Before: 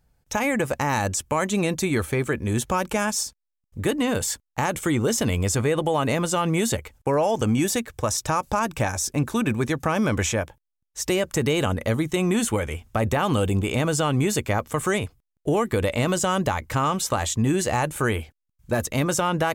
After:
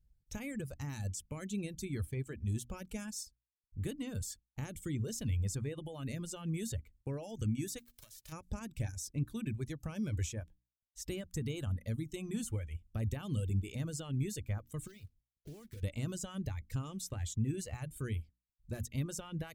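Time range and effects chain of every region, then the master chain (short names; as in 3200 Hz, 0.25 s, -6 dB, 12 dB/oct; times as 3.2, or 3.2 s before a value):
7.78–8.31 spectral whitening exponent 0.3 + bell 80 Hz -8.5 dB 1.6 oct + compressor 12:1, threshold -31 dBFS
14.87–15.83 block floating point 3-bit + compressor 2:1, threshold -40 dBFS
whole clip: notches 60/120/180/240/300 Hz; reverb removal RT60 1.4 s; passive tone stack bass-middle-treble 10-0-1; gain +4.5 dB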